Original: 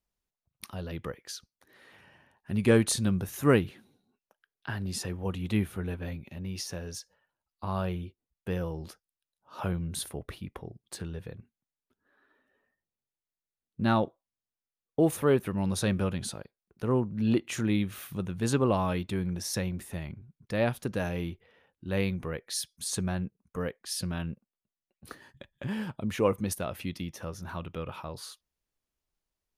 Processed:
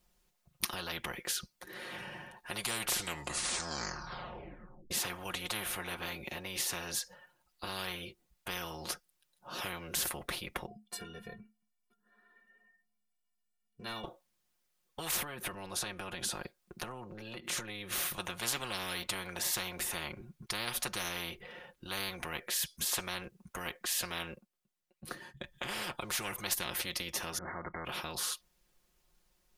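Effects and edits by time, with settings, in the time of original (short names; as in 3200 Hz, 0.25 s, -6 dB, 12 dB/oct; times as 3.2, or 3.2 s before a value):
2.75 tape stop 2.16 s
10.66–14.04 metallic resonator 210 Hz, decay 0.22 s, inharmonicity 0.03
15.22–18.18 compressor 12:1, threshold -39 dBFS
24.32–25.56 dip -9.5 dB, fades 0.16 s
27.38–27.85 brick-wall FIR low-pass 2200 Hz
whole clip: comb 5.6 ms, depth 72%; spectral compressor 10:1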